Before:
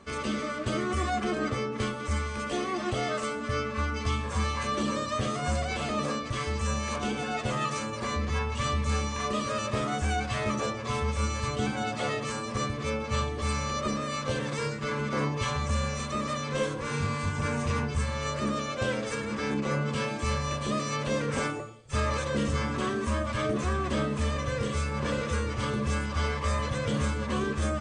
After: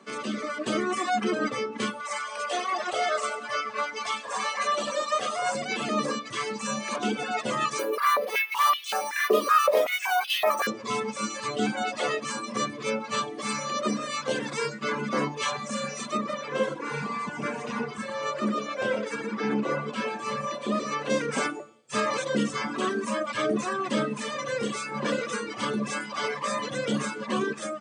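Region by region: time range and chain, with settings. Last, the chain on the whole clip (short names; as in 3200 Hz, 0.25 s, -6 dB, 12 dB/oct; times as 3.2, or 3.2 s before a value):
2–5.55 resonant low shelf 420 Hz -13 dB, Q 1.5 + split-band echo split 870 Hz, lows 0.199 s, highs 96 ms, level -7.5 dB
7.79–10.67 careless resampling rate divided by 3×, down filtered, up hold + stepped high-pass 5.3 Hz 400–3000 Hz
16.17–21.1 high shelf 3600 Hz -11 dB + de-hum 58.2 Hz, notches 10 + echo 0.121 s -6.5 dB
whole clip: AGC gain up to 5 dB; steep high-pass 170 Hz 36 dB/oct; reverb removal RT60 2 s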